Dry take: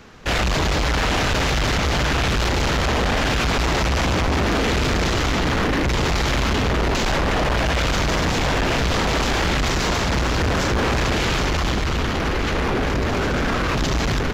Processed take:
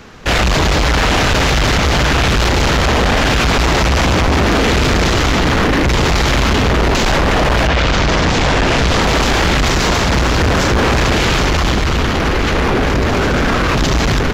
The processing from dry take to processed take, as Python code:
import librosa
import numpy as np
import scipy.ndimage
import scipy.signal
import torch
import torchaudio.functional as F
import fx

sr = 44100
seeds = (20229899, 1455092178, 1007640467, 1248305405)

y = fx.lowpass(x, sr, hz=fx.line((7.66, 4600.0), (9.0, 12000.0)), slope=12, at=(7.66, 9.0), fade=0.02)
y = y * librosa.db_to_amplitude(7.0)